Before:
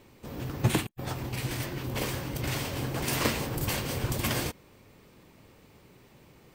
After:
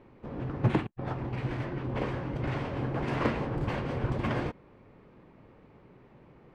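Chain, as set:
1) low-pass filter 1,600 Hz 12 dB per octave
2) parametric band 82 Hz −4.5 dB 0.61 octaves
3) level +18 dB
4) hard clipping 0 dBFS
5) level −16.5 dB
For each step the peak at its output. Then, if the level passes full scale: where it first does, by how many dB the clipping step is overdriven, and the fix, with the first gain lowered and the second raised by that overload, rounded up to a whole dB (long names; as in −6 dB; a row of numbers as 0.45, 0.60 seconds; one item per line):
−12.0, −12.0, +6.0, 0.0, −16.5 dBFS
step 3, 6.0 dB
step 3 +12 dB, step 5 −10.5 dB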